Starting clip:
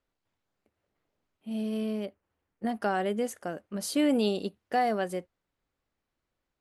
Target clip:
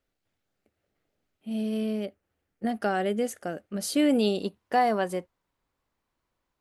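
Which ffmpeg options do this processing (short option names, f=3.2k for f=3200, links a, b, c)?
-af "asetnsamples=n=441:p=0,asendcmd='4.42 equalizer g 7',equalizer=f=1k:t=o:w=0.34:g=-8.5,volume=2.5dB"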